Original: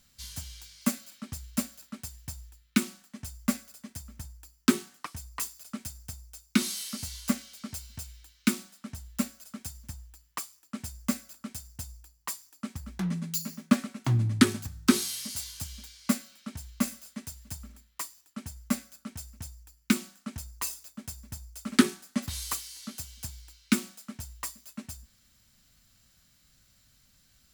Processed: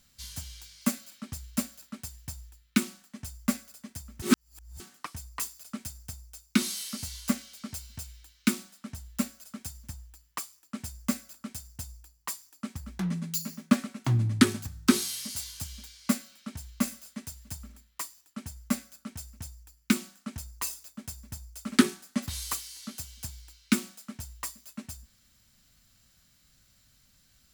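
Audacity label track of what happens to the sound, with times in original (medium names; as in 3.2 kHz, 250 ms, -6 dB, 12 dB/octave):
4.220000	4.800000	reverse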